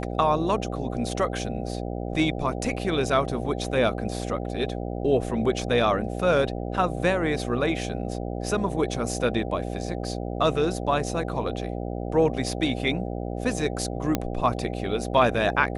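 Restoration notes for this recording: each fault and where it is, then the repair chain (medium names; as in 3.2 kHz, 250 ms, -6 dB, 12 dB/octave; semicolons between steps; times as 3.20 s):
buzz 60 Hz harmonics 13 -31 dBFS
14.15 s: pop -8 dBFS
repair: de-click; de-hum 60 Hz, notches 13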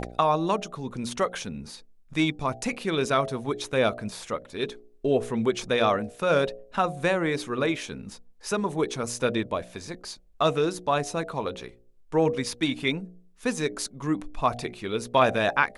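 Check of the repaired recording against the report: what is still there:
14.15 s: pop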